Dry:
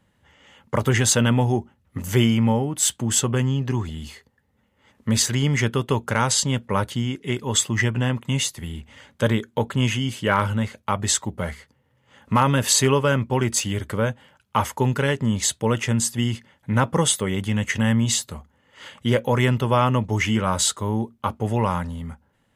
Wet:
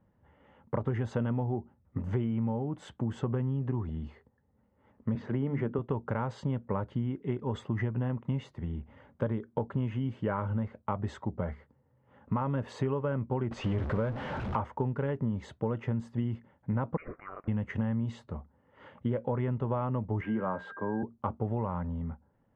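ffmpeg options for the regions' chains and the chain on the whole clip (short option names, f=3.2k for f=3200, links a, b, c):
-filter_complex "[0:a]asettb=1/sr,asplit=3[a][b][c];[a]atrim=end=5.154[d];[b]atrim=start=5.15:end=5.79,asetpts=PTS-STARTPTS,afade=t=in:d=0.004:c=qsin,afade=t=out:st=0.636:d=0.004:c=qsin,highpass=200,lowpass=3.1k,lowshelf=f=450:g=7,bandreject=f=50:t=h:w=6,bandreject=f=100:t=h:w=6,bandreject=f=150:t=h:w=6,bandreject=f=200:t=h:w=6,bandreject=f=250:t=h:w=6,bandreject=f=300:t=h:w=6[e];[c]atrim=start=5.786[f];[d][e]acrossfade=d=0.004:c1=hsin:c2=qsin[g];[g][f]acrossfade=d=0.004:c1=qsin:c2=hsin,asettb=1/sr,asplit=3[h][i][j];[h]atrim=end=13.514[k];[i]atrim=start=13.51:end=14.56,asetpts=PTS-STARTPTS,afade=t=in:d=0.004:c=qsin,afade=t=out:st=1.046:d=0.004:c=qsin,aeval=exprs='val(0)+0.5*0.0668*sgn(val(0))':c=same,acrossover=split=6300[l][m];[m]acompressor=threshold=-38dB:ratio=4:attack=1:release=60[n];[l][n]amix=inputs=2:normalize=0,highshelf=f=2.3k:g=8.5[o];[j]atrim=start=14.556[p];[k][o]acrossfade=d=0.004:c1=hsin:c2=qsin[q];[q][p]acrossfade=d=0.004:c1=qsin:c2=hsin,asettb=1/sr,asplit=3[r][s][t];[r]atrim=end=16.974[u];[s]atrim=start=16.97:end=17.48,asetpts=PTS-STARTPTS,afade=t=in:d=0.004:c=qsin,afade=t=out:st=0.506:d=0.004:c=qsin,highpass=f=1k:w=0.5412,highpass=f=1k:w=1.3066,lowpass=f=2.8k:t=q:w=0.5098,lowpass=f=2.8k:t=q:w=0.6013,lowpass=f=2.8k:t=q:w=0.9,lowpass=f=2.8k:t=q:w=2.563,afreqshift=-3300[v];[t]atrim=start=17.476[w];[u][v]acrossfade=d=0.004:c1=hsin:c2=qsin[x];[x][w]acrossfade=d=0.004:c1=qsin:c2=hsin,asettb=1/sr,asplit=3[y][z][aa];[y]atrim=end=20.214[ab];[z]atrim=start=20.21:end=21.03,asetpts=PTS-STARTPTS,afade=t=in:d=0.004:c=qsin,afade=t=out:st=0.816:d=0.004:c=qsin,highpass=88,acrossover=split=170 3000:gain=0.178 1 0.112[ac][ad][ae];[ac][ad][ae]amix=inputs=3:normalize=0,aeval=exprs='val(0)+0.0224*sin(2*PI*1600*n/s)':c=same[af];[aa]atrim=start=21.026[ag];[ab][af]acrossfade=d=0.004:c1=hsin:c2=qsin[ah];[ah][ag]acrossfade=d=0.004:c1=qsin:c2=hsin,lowpass=1k,acompressor=threshold=-24dB:ratio=6,volume=-3dB"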